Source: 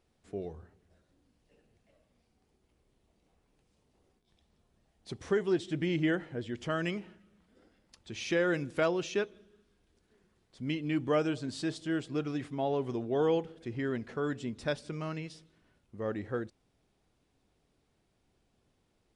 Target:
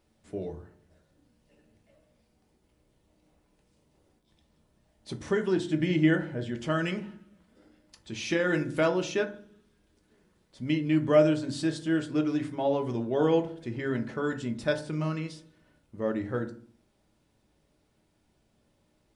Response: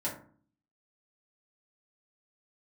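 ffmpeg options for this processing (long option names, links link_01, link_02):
-filter_complex "[0:a]asplit=2[link_01][link_02];[link_02]highshelf=frequency=8700:gain=9[link_03];[1:a]atrim=start_sample=2205[link_04];[link_03][link_04]afir=irnorm=-1:irlink=0,volume=-6dB[link_05];[link_01][link_05]amix=inputs=2:normalize=0"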